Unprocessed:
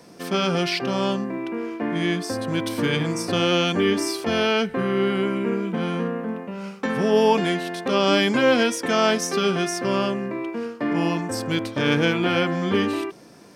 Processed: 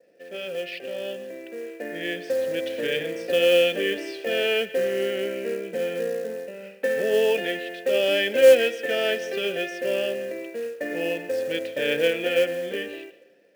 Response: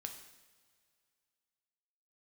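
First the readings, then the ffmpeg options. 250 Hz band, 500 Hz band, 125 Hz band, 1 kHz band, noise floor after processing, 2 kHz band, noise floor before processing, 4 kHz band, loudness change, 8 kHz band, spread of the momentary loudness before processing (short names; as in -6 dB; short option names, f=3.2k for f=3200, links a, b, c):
-12.0 dB, +1.5 dB, -18.0 dB, -13.5 dB, -50 dBFS, -1.5 dB, -43 dBFS, -3.0 dB, -1.5 dB, -8.5 dB, 9 LU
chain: -filter_complex "[0:a]adynamicequalizer=threshold=0.0112:dfrequency=3200:dqfactor=1.6:tfrequency=3200:tqfactor=1.6:attack=5:release=100:ratio=0.375:range=3:mode=boostabove:tftype=bell,asplit=3[a][b][c];[a]bandpass=f=530:t=q:w=8,volume=0dB[d];[b]bandpass=f=1.84k:t=q:w=8,volume=-6dB[e];[c]bandpass=f=2.48k:t=q:w=8,volume=-9dB[f];[d][e][f]amix=inputs=3:normalize=0,acrusher=bits=5:mode=log:mix=0:aa=0.000001,dynaudnorm=f=430:g=7:m=9dB,asplit=2[g][h];[1:a]atrim=start_sample=2205,adelay=144[i];[h][i]afir=irnorm=-1:irlink=0,volume=-14dB[j];[g][j]amix=inputs=2:normalize=0,volume=-1dB"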